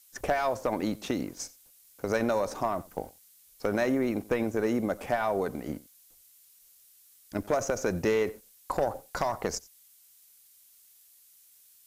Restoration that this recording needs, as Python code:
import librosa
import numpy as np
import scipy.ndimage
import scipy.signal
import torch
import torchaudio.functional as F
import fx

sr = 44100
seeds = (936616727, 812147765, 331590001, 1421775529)

y = fx.fix_declick_ar(x, sr, threshold=6.5)
y = fx.noise_reduce(y, sr, print_start_s=9.96, print_end_s=10.46, reduce_db=16.0)
y = fx.fix_echo_inverse(y, sr, delay_ms=89, level_db=-21.0)